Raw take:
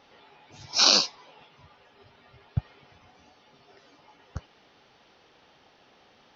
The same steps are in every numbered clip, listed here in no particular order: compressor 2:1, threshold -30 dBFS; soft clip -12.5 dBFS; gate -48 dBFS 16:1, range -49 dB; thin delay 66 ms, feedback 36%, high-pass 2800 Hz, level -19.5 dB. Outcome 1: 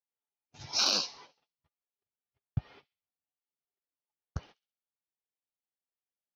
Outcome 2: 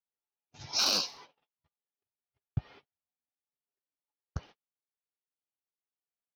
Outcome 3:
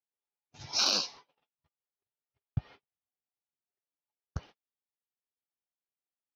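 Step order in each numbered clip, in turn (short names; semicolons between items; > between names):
gate > thin delay > compressor > soft clip; soft clip > thin delay > gate > compressor; compressor > soft clip > thin delay > gate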